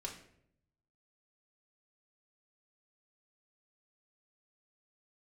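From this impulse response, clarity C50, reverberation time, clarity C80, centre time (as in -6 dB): 8.0 dB, 0.70 s, 11.5 dB, 21 ms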